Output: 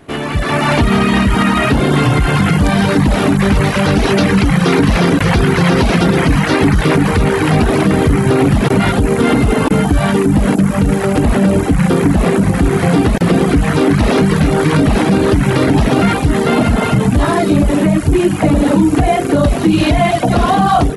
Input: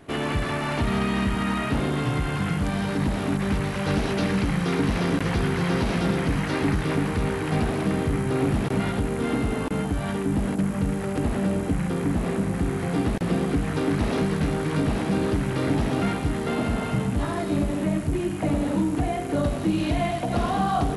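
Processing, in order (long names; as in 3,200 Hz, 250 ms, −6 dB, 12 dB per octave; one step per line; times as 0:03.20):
reverb reduction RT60 0.72 s
automatic gain control gain up to 11.5 dB
boost into a limiter +8.5 dB
level −2 dB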